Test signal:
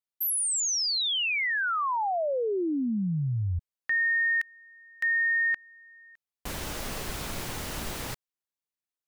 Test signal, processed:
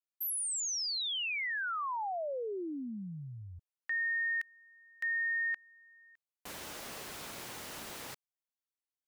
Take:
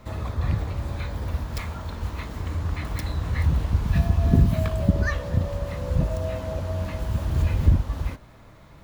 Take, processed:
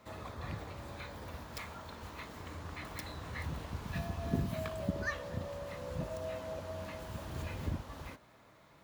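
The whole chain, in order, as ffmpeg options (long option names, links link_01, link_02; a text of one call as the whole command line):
ffmpeg -i in.wav -af "highpass=frequency=330:poles=1,volume=-7.5dB" out.wav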